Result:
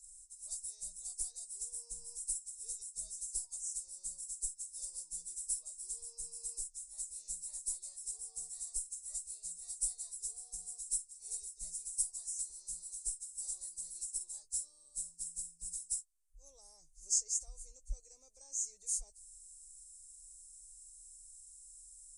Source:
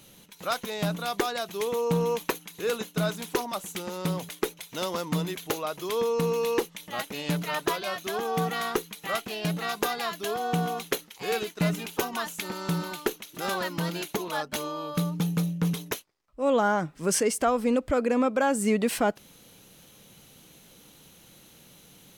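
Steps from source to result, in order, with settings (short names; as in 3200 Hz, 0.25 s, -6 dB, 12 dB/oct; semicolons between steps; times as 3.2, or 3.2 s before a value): nonlinear frequency compression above 3900 Hz 1.5:1; inverse Chebyshev band-stop 100–3300 Hz, stop band 50 dB; gain +6.5 dB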